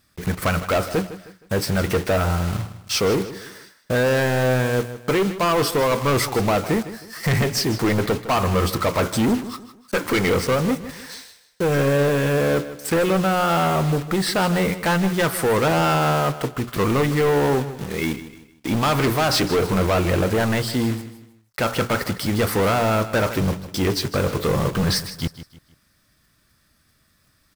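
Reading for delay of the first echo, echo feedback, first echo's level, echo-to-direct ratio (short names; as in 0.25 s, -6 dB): 0.156 s, 36%, -14.0 dB, -13.5 dB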